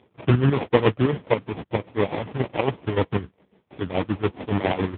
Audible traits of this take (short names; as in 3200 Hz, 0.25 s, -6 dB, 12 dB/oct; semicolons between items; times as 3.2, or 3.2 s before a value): chopped level 7.1 Hz, depth 65%, duty 50%; aliases and images of a low sample rate 1500 Hz, jitter 20%; AMR-NB